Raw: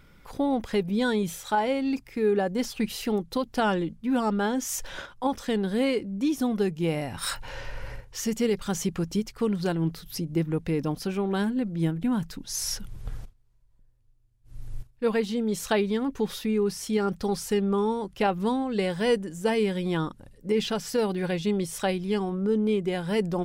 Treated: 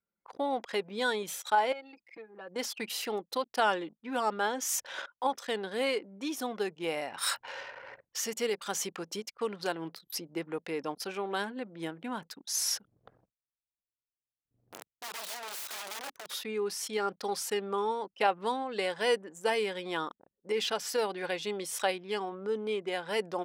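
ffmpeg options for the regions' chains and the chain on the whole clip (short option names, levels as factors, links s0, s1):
-filter_complex "[0:a]asettb=1/sr,asplit=3[s0][s1][s2];[s0]atrim=end=1.724[s3];[s1]atrim=start=1.72:end=2.56,asetpts=PTS-STARTPTS,afade=t=in:d=0.004:c=qsin,afade=t=out:st=0.836:d=0.004:c=qsin,acompressor=threshold=0.0224:ratio=20:attack=3.2:release=140:knee=1:detection=peak,lowshelf=f=460:g=-3.5,aecho=1:1:6:0.98,atrim=end_sample=37044[s4];[s2]atrim=start=2.556[s5];[s3][s4]acrossfade=d=0.004:c1=hsin:c2=qsin[s6];[s6][s5]acrossfade=d=0.004:c1=qsin:c2=hsin,asettb=1/sr,asplit=3[s7][s8][s9];[s7]atrim=end=14.724[s10];[s8]atrim=start=14.72:end=16.31,asetpts=PTS-STARTPTS,afade=t=in:d=0.004:c=qsin,afade=t=out:st=1.586:d=0.004:c=qsin,acrossover=split=140|3000[s11][s12][s13];[s12]acompressor=threshold=0.00891:ratio=3:attack=3.2:release=140:knee=2.83:detection=peak[s14];[s11][s14][s13]amix=inputs=3:normalize=0,aeval=exprs='(mod(53.1*val(0)+1,2)-1)/53.1':c=same[s15];[s9]atrim=start=16.306[s16];[s10][s15]acrossfade=d=0.004:c1=hsin:c2=qsin[s17];[s17][s16]acrossfade=d=0.004:c1=qsin:c2=hsin,anlmdn=0.251,highpass=550"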